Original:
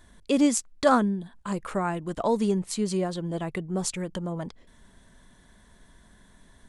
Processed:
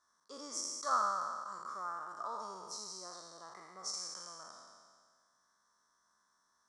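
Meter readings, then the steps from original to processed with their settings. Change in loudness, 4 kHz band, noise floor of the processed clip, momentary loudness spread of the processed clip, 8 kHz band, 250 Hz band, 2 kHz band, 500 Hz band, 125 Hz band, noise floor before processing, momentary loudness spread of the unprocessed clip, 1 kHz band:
−12.0 dB, −6.0 dB, −76 dBFS, 19 LU, −8.0 dB, −32.5 dB, −13.5 dB, −21.5 dB, −35.5 dB, −57 dBFS, 11 LU, −7.0 dB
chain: peak hold with a decay on every bin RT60 1.91 s
pair of resonant band-passes 2,600 Hz, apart 2.2 octaves
level −5 dB

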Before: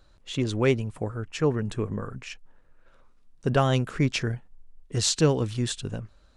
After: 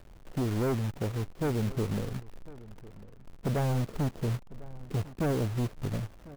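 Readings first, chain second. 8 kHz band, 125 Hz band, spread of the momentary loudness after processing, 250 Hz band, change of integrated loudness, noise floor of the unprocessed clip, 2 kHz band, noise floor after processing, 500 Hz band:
−15.0 dB, −3.0 dB, 20 LU, −4.0 dB, −5.5 dB, −57 dBFS, −9.5 dB, −51 dBFS, −7.0 dB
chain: Bessel low-pass filter 520 Hz, order 6
in parallel at −3 dB: downward compressor 5 to 1, threshold −41 dBFS, peak gain reduction 21.5 dB
on the sum: log-companded quantiser 4 bits
hard clipping −25.5 dBFS, distortion −6 dB
slap from a distant wall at 180 metres, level −19 dB

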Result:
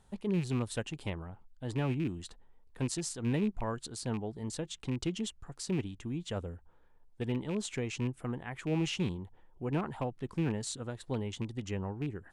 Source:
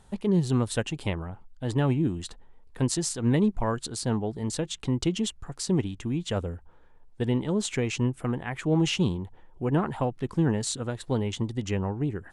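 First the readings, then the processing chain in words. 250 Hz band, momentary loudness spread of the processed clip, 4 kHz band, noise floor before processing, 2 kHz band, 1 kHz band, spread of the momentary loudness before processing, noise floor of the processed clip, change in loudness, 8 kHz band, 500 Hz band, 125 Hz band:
−8.0 dB, 8 LU, −8.0 dB, −54 dBFS, −6.5 dB, −8.0 dB, 8 LU, −62 dBFS, −8.0 dB, −8.0 dB, −8.0 dB, −8.0 dB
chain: loose part that buzzes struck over −27 dBFS, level −28 dBFS
level −8 dB

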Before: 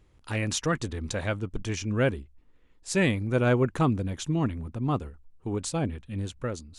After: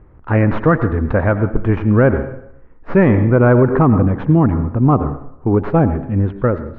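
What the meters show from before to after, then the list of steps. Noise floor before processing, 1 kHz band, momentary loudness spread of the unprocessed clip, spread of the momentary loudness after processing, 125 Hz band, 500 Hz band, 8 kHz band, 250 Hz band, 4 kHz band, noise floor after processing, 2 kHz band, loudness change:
−59 dBFS, +13.5 dB, 11 LU, 7 LU, +14.5 dB, +13.5 dB, below −35 dB, +14.5 dB, below −10 dB, −42 dBFS, +9.0 dB, +13.5 dB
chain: stylus tracing distortion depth 0.12 ms
low-pass filter 1,600 Hz 24 dB per octave
dense smooth reverb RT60 0.72 s, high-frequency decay 0.85×, pre-delay 75 ms, DRR 12 dB
boost into a limiter +18.5 dB
level −2.5 dB

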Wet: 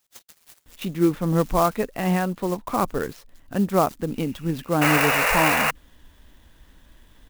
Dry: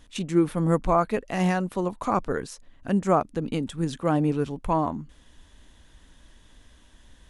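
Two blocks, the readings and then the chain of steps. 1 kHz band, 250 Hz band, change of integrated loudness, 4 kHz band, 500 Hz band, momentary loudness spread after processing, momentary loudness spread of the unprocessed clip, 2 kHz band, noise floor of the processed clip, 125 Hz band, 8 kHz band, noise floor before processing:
+3.5 dB, +1.5 dB, +3.5 dB, +11.0 dB, +2.0 dB, 12 LU, 8 LU, +13.5 dB, −61 dBFS, +1.5 dB, +11.0 dB, −55 dBFS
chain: sound drawn into the spectrogram noise, 0:04.15–0:05.05, 440–2,900 Hz −22 dBFS
multiband delay without the direct sound highs, lows 660 ms, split 5,800 Hz
converter with an unsteady clock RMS 0.032 ms
level +1.5 dB

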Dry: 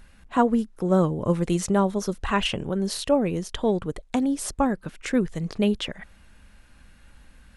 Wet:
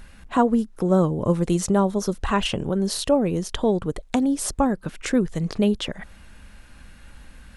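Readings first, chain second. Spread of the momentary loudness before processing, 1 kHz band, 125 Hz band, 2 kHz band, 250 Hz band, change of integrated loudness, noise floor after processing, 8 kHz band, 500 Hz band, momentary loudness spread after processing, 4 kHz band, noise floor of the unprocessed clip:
7 LU, +1.0 dB, +2.5 dB, 0.0 dB, +2.0 dB, +2.0 dB, −47 dBFS, +3.5 dB, +2.0 dB, 6 LU, +1.0 dB, −53 dBFS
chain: dynamic equaliser 2,200 Hz, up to −5 dB, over −44 dBFS, Q 1.2
in parallel at +0.5 dB: downward compressor, threshold −31 dBFS, peak gain reduction 15.5 dB

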